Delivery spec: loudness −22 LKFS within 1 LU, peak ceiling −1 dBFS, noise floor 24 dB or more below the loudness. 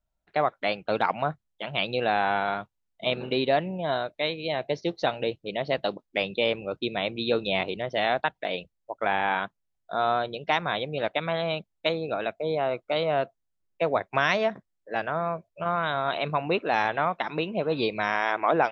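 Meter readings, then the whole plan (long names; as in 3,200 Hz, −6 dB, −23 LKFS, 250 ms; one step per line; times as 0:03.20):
integrated loudness −27.5 LKFS; sample peak −8.0 dBFS; target loudness −22.0 LKFS
→ level +5.5 dB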